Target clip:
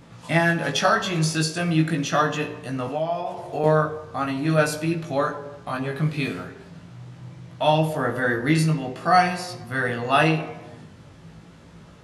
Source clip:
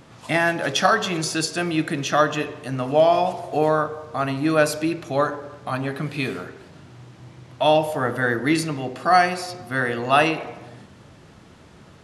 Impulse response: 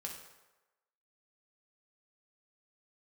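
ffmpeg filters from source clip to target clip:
-filter_complex "[0:a]asplit=2[a][b];[b]bass=f=250:g=10,treble=f=4k:g=0[c];[1:a]atrim=start_sample=2205,afade=t=out:st=0.16:d=0.01,atrim=end_sample=7497[d];[c][d]afir=irnorm=-1:irlink=0,volume=-3.5dB[e];[a][e]amix=inputs=2:normalize=0,asettb=1/sr,asplit=3[f][g][h];[f]atrim=end=2.874[i];[g]atrim=start=2.87:end=3.64,asetpts=PTS-STARTPTS,afade=t=in:d=0.004:c=qsin,afade=t=out:st=0.766:d=0.004:c=qsin,acrossover=split=350|2500[j][k][l];[j]acompressor=threshold=-32dB:ratio=4[m];[k]acompressor=threshold=-21dB:ratio=4[n];[l]acompressor=threshold=-47dB:ratio=4[o];[m][n][o]amix=inputs=3:normalize=0[p];[h]atrim=start=3.636[q];[i][p]acrossfade=d=0.004:c1=hsin:c2=qsin[r];[r][q]acrossfade=d=0.004:c1=qsin:c2=hsin,flanger=delay=17.5:depth=2.1:speed=0.42,volume=-1.5dB"

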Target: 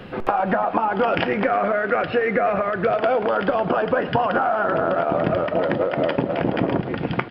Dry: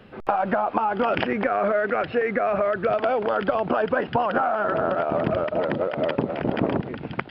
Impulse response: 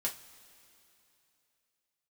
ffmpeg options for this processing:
-filter_complex "[0:a]acompressor=threshold=-32dB:ratio=2.5,aecho=1:1:109|218|327|436|545|654:0.158|0.0951|0.0571|0.0342|0.0205|0.0123,asplit=2[a][b];[1:a]atrim=start_sample=2205[c];[b][c]afir=irnorm=-1:irlink=0,volume=-8dB[d];[a][d]amix=inputs=2:normalize=0,volume=8dB"

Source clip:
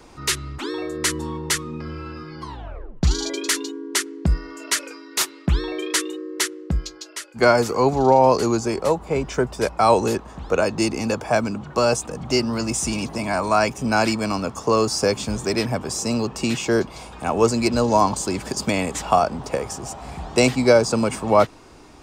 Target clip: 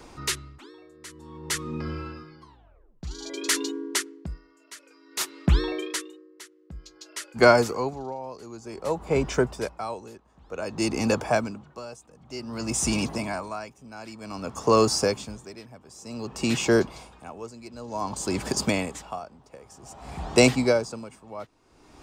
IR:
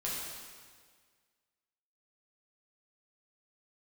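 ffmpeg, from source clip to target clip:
-af "aeval=exprs='val(0)*pow(10,-23*(0.5-0.5*cos(2*PI*0.54*n/s))/20)':c=same"

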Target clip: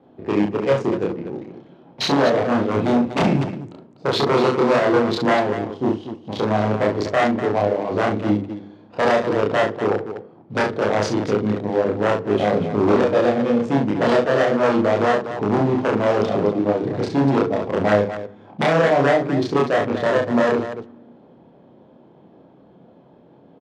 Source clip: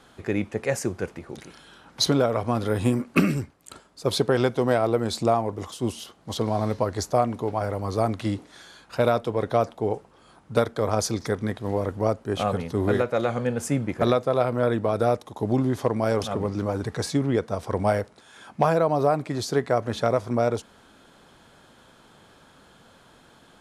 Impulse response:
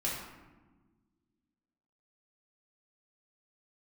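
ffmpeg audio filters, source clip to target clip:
-filter_complex "[0:a]acrusher=bits=5:mode=log:mix=0:aa=0.000001,equalizer=f=1.4k:w=1.5:g=-13.5,bandreject=f=50:t=h:w=6,bandreject=f=100:t=h:w=6,bandreject=f=150:t=h:w=6,bandreject=f=200:t=h:w=6,bandreject=f=250:t=h:w=6,bandreject=f=300:t=h:w=6,bandreject=f=350:t=h:w=6,bandreject=f=400:t=h:w=6,bandreject=f=450:t=h:w=6,bandreject=f=500:t=h:w=6,aeval=exprs='0.0944*(abs(mod(val(0)/0.0944+3,4)-2)-1)':c=same,adynamicsmooth=sensitivity=4:basefreq=820,highpass=160,lowpass=6.3k,aecho=1:1:29.15|67.06|244.9:1|0.501|0.355,asplit=2[a][b];[1:a]atrim=start_sample=2205[c];[b][c]afir=irnorm=-1:irlink=0,volume=-24dB[d];[a][d]amix=inputs=2:normalize=0,volume=7dB"

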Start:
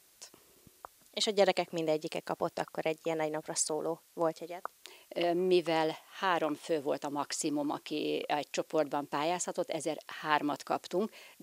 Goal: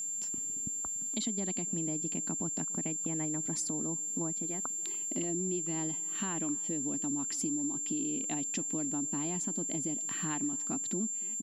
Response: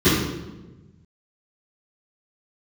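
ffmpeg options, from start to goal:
-filter_complex "[0:a]lowshelf=f=360:t=q:w=3:g=12.5,acompressor=threshold=-35dB:ratio=6,asplit=2[a][b];[b]adelay=289,lowpass=f=2k:p=1,volume=-22dB,asplit=2[c][d];[d]adelay=289,lowpass=f=2k:p=1,volume=0.38,asplit=2[e][f];[f]adelay=289,lowpass=f=2k:p=1,volume=0.38[g];[c][e][g]amix=inputs=3:normalize=0[h];[a][h]amix=inputs=2:normalize=0,aeval=exprs='val(0)+0.02*sin(2*PI*7300*n/s)':c=same"

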